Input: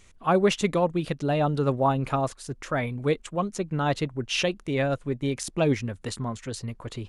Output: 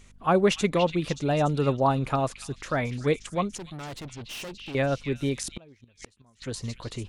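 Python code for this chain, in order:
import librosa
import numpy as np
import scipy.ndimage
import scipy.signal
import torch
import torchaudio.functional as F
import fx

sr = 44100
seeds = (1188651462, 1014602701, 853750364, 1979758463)

p1 = fx.add_hum(x, sr, base_hz=50, snr_db=29)
p2 = fx.tube_stage(p1, sr, drive_db=36.0, bias=0.7, at=(3.57, 4.75))
p3 = p2 + fx.echo_stepped(p2, sr, ms=289, hz=3100.0, octaves=0.7, feedback_pct=70, wet_db=-4.0, dry=0)
y = fx.gate_flip(p3, sr, shuts_db=-22.0, range_db=-30, at=(5.47, 6.42))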